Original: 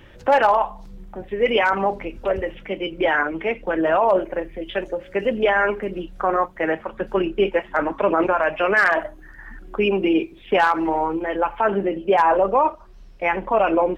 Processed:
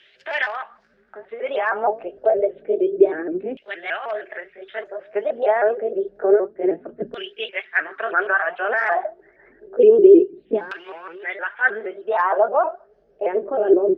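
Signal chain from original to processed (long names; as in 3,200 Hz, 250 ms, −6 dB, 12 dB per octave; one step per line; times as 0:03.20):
pitch shifter swept by a sawtooth +3.5 semitones, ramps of 156 ms
thirty-one-band graphic EQ 160 Hz +5 dB, 400 Hz +12 dB, 630 Hz +6 dB, 1,000 Hz −9 dB, 1,600 Hz +8 dB, 5,000 Hz +7 dB
auto-filter band-pass saw down 0.28 Hz 230–3,200 Hz
level +3 dB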